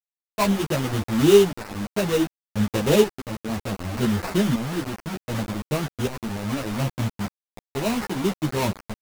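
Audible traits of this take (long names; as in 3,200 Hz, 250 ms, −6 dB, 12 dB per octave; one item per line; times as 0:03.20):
aliases and images of a low sample rate 3,300 Hz, jitter 20%
tremolo saw up 0.66 Hz, depth 80%
a quantiser's noise floor 6 bits, dither none
a shimmering, thickened sound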